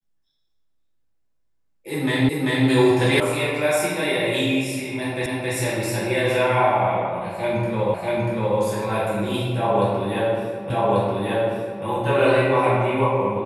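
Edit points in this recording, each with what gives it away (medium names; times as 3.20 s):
2.29 s: repeat of the last 0.39 s
3.20 s: sound stops dead
5.26 s: repeat of the last 0.27 s
7.94 s: repeat of the last 0.64 s
10.70 s: repeat of the last 1.14 s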